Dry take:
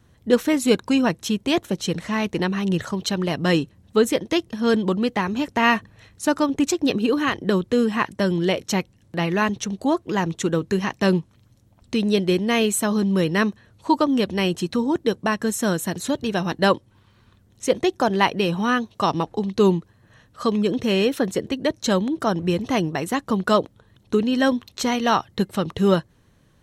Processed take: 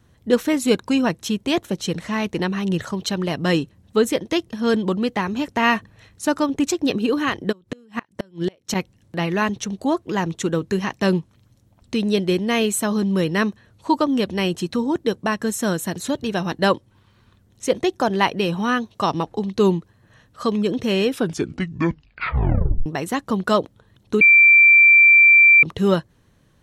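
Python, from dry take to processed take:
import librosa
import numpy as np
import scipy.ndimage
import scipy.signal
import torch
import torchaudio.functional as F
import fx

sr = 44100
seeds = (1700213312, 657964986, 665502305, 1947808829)

y = fx.gate_flip(x, sr, shuts_db=-13.0, range_db=-31, at=(7.51, 8.74), fade=0.02)
y = fx.edit(y, sr, fx.tape_stop(start_s=21.05, length_s=1.81),
    fx.bleep(start_s=24.21, length_s=1.42, hz=2350.0, db=-7.5), tone=tone)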